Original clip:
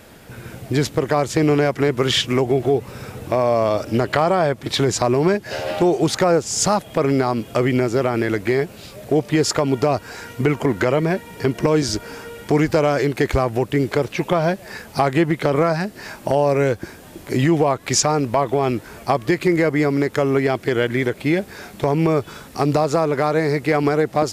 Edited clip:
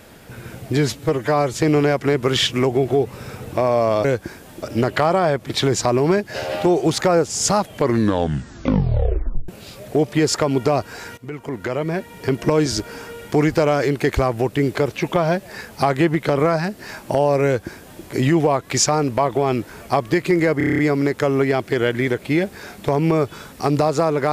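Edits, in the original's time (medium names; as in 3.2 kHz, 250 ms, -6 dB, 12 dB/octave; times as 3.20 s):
0.77–1.28 s: stretch 1.5×
6.83 s: tape stop 1.82 s
10.34–11.56 s: fade in, from -18.5 dB
16.62–17.20 s: copy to 3.79 s
19.74 s: stutter 0.03 s, 8 plays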